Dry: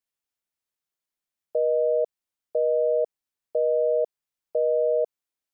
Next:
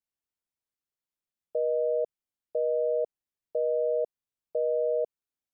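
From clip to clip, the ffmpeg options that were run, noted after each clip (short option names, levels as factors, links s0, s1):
-af "lowshelf=f=440:g=7.5,volume=0.422"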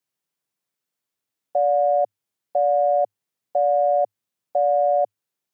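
-af "acontrast=89,afreqshift=100,volume=1.12"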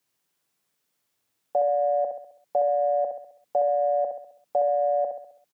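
-af "alimiter=limit=0.0794:level=0:latency=1:release=105,aecho=1:1:66|132|198|264|330|396:0.473|0.222|0.105|0.0491|0.0231|0.0109,volume=2.24"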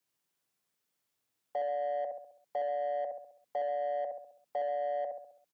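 -filter_complex "[0:a]acrossover=split=490|750[s0][s1][s2];[s0]alimiter=level_in=3.35:limit=0.0631:level=0:latency=1,volume=0.299[s3];[s1]asoftclip=type=tanh:threshold=0.0282[s4];[s3][s4][s2]amix=inputs=3:normalize=0,volume=0.473"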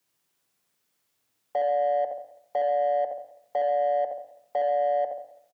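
-af "aecho=1:1:86|172|258|344|430:0.224|0.105|0.0495|0.0232|0.0109,volume=2.37"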